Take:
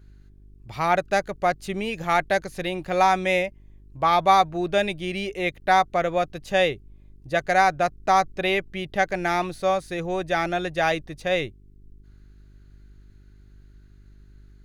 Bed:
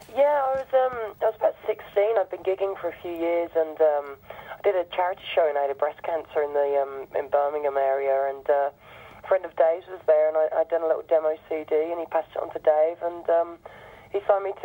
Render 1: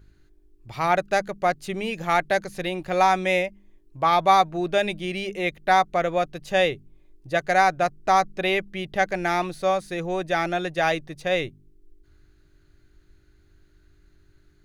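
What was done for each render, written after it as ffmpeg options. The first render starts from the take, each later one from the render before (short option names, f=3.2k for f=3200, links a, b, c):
-af "bandreject=f=50:t=h:w=4,bandreject=f=100:t=h:w=4,bandreject=f=150:t=h:w=4,bandreject=f=200:t=h:w=4,bandreject=f=250:t=h:w=4"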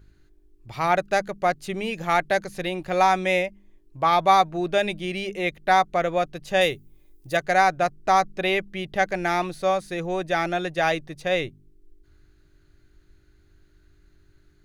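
-filter_complex "[0:a]asettb=1/sr,asplit=3[a][b][c];[a]atrim=end=6.614[d];[b]atrim=start=6.61:end=7.37,asetpts=PTS-STARTPTS,afade=t=in:d=0.004:c=qsin,afade=t=out:st=0.756:d=0.004:c=qsin,aemphasis=mode=production:type=50fm[e];[c]atrim=start=7.366[f];[d][e]acrossfade=d=0.004:c1=hsin:c2=qsin[g];[g][f]acrossfade=d=0.004:c1=qsin:c2=hsin"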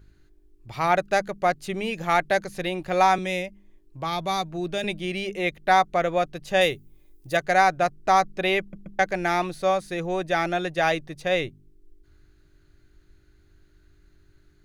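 -filter_complex "[0:a]asettb=1/sr,asplit=3[a][b][c];[a]atrim=end=3.184[d];[b]atrim=start=3.18:end=4.84,asetpts=PTS-STARTPTS,afade=t=in:d=0.004:c=qsin,afade=t=out:st=1.656:d=0.004:c=qsin,acrossover=split=330|3000[e][f][g];[f]acompressor=threshold=-45dB:ratio=1.5:attack=3.2:release=140:knee=2.83:detection=peak[h];[e][h][g]amix=inputs=3:normalize=0[i];[c]atrim=start=4.836[j];[d][i]acrossfade=d=0.004:c1=hsin:c2=qsin[k];[k][j]acrossfade=d=0.004:c1=qsin:c2=hsin,asplit=4[l][m][n][o];[l]atrim=end=8.732[p];[m]atrim=start=8.598:end=8.732[q];[n]atrim=start=8.598:end=8.732[r];[o]atrim=start=8.988[s];[p][q]acrossfade=d=0.004:c1=hsin:c2=hsin[t];[t][r]acrossfade=d=0.004:c1=hsin:c2=hsin[u];[u][s]acrossfade=d=0.004:c1=hsin:c2=hsin"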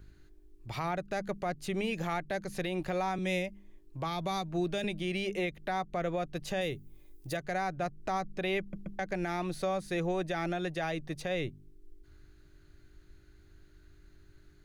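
-filter_complex "[0:a]acrossover=split=320[a][b];[b]acompressor=threshold=-31dB:ratio=2.5[c];[a][c]amix=inputs=2:normalize=0,alimiter=limit=-23.5dB:level=0:latency=1:release=146"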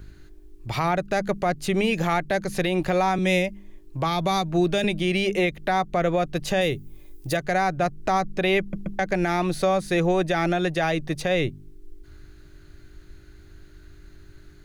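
-af "volume=10.5dB"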